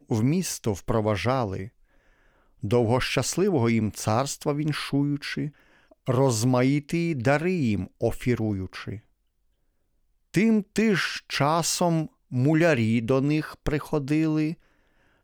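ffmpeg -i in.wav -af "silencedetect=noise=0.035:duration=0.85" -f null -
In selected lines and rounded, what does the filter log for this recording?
silence_start: 1.64
silence_end: 2.64 | silence_duration: 1.00
silence_start: 8.95
silence_end: 10.34 | silence_duration: 1.39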